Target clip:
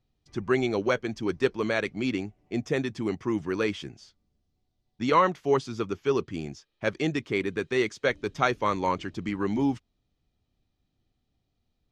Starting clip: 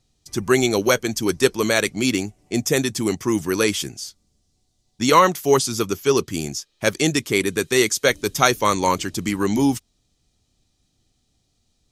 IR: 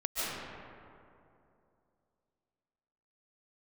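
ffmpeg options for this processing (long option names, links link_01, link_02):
-af "lowpass=2700,volume=-7dB"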